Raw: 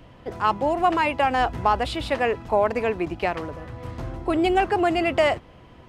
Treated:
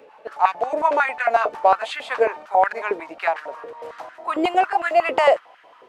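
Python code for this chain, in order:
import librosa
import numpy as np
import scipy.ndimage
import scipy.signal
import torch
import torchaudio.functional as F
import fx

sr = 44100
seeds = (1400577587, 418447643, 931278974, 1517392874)

y = fx.pitch_glide(x, sr, semitones=-2.5, runs='ending unshifted')
y = fx.filter_held_highpass(y, sr, hz=11.0, low_hz=460.0, high_hz=1600.0)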